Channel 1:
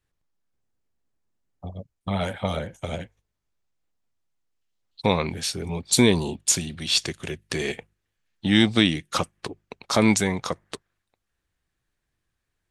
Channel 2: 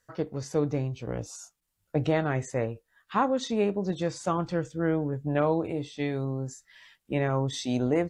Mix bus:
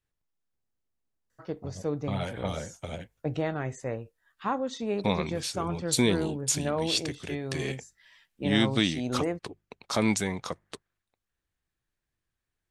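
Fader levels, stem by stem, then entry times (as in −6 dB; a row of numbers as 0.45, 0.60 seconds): −6.5, −4.5 decibels; 0.00, 1.30 seconds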